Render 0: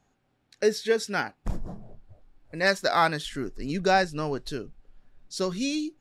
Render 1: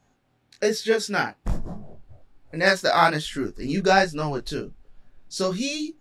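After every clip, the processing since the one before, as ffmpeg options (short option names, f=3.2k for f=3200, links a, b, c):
-af "flanger=delay=17.5:depth=8:speed=1.2,volume=7dB"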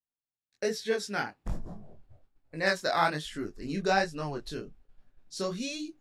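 -af "agate=range=-33dB:threshold=-43dB:ratio=3:detection=peak,volume=-8dB"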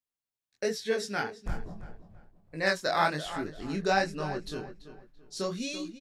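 -filter_complex "[0:a]asplit=2[a][b];[b]adelay=336,lowpass=f=3.5k:p=1,volume=-12.5dB,asplit=2[c][d];[d]adelay=336,lowpass=f=3.5k:p=1,volume=0.31,asplit=2[e][f];[f]adelay=336,lowpass=f=3.5k:p=1,volume=0.31[g];[a][c][e][g]amix=inputs=4:normalize=0"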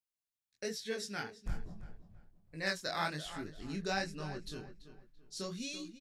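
-af "equalizer=f=690:w=0.44:g=-8,volume=-3.5dB"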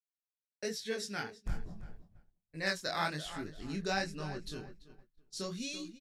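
-af "agate=range=-33dB:threshold=-49dB:ratio=3:detection=peak,volume=1.5dB"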